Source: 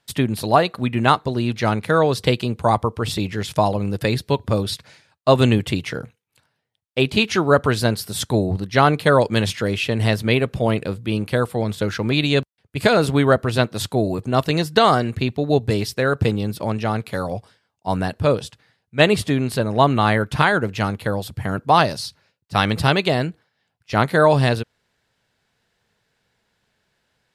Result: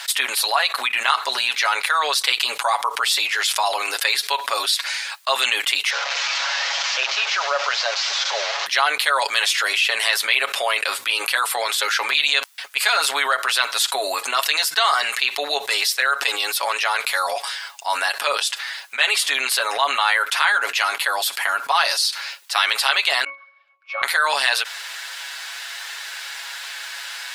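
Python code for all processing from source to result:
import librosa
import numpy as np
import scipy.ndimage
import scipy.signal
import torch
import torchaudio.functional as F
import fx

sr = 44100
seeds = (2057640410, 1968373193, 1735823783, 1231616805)

y = fx.chain(x, sr, fx.delta_mod(bps=32000, step_db=-22.5),
    fx.ladder_highpass(hz=490.0, resonance_pct=60), at=(5.9, 8.66))
y = fx.chain(y, sr, fx.highpass(hz=450.0, slope=12),
    fx.air_absorb(metres=90.0),
    fx.octave_resonator(note='C#', decay_s=0.26), at=(23.24, 24.03))
y = scipy.signal.sosfilt(scipy.signal.bessel(4, 1400.0, 'highpass', norm='mag', fs=sr, output='sos'), y)
y = y + 0.67 * np.pad(y, (int(7.2 * sr / 1000.0), 0))[:len(y)]
y = fx.env_flatten(y, sr, amount_pct=70)
y = F.gain(torch.from_numpy(y), -1.0).numpy()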